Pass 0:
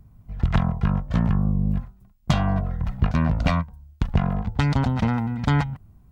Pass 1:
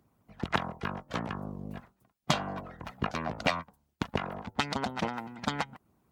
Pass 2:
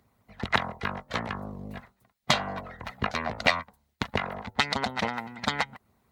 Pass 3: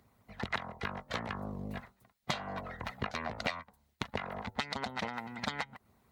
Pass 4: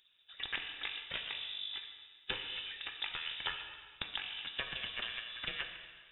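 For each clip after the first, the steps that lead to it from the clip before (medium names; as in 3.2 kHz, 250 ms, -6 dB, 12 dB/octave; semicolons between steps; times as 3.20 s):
high-pass 250 Hz 12 dB/octave; harmonic-percussive split harmonic -15 dB; trim +1.5 dB
graphic EQ with 31 bands 160 Hz -8 dB, 315 Hz -10 dB, 2 kHz +7 dB, 4 kHz +6 dB; trim +3.5 dB
compression 3:1, threshold -35 dBFS, peak gain reduction 14.5 dB
plate-style reverb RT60 1.7 s, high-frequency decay 0.95×, DRR 4 dB; frequency inversion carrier 3.7 kHz; trim -4 dB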